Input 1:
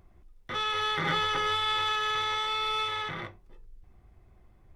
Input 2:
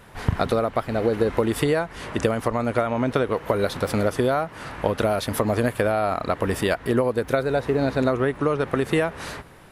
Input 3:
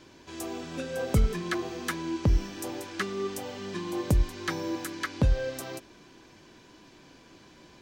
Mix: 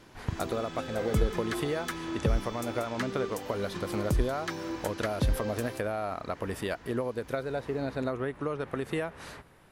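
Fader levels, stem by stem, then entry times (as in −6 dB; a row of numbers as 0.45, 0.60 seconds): −19.0, −10.5, −4.0 decibels; 0.00, 0.00, 0.00 seconds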